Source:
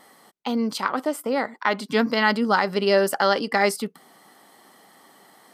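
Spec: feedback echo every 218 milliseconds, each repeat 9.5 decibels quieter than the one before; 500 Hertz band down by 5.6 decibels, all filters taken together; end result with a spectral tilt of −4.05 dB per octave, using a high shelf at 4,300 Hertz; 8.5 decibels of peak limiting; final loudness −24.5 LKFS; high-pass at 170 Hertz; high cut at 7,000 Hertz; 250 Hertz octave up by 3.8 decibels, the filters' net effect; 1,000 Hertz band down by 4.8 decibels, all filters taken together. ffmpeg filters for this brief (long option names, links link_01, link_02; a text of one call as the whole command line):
ffmpeg -i in.wav -af "highpass=170,lowpass=7000,equalizer=frequency=250:width_type=o:gain=7.5,equalizer=frequency=500:width_type=o:gain=-8.5,equalizer=frequency=1000:width_type=o:gain=-4.5,highshelf=frequency=4300:gain=7.5,alimiter=limit=-14dB:level=0:latency=1,aecho=1:1:218|436|654|872:0.335|0.111|0.0365|0.012,volume=0.5dB" out.wav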